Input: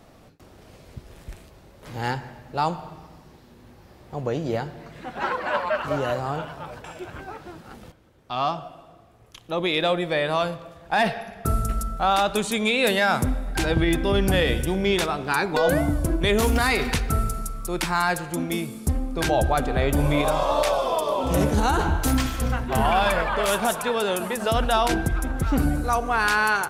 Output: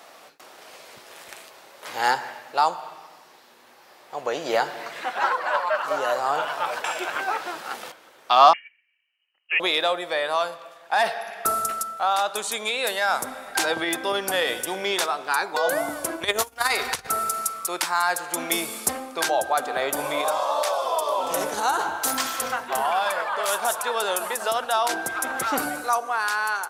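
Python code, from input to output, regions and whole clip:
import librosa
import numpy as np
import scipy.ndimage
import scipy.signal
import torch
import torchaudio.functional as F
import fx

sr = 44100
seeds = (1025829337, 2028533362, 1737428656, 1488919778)

y = fx.chain(x, sr, fx.freq_invert(carrier_hz=3000),
    fx.upward_expand(threshold_db=-47.0, expansion=2.5), at=(8.53, 9.6))
y = fx.chain(y, sr, fx.low_shelf_res(hz=130.0, db=13.5, q=1.5),
    fx.over_compress(threshold_db=-14.0, ratio=-0.5), at=(16.23, 17.07))
y = scipy.signal.sosfilt(scipy.signal.butter(2, 750.0, 'highpass', fs=sr, output='sos'), y)
y = fx.dynamic_eq(y, sr, hz=2500.0, q=1.2, threshold_db=-41.0, ratio=4.0, max_db=-7)
y = fx.rider(y, sr, range_db=10, speed_s=0.5)
y = y * 10.0 ** (4.5 / 20.0)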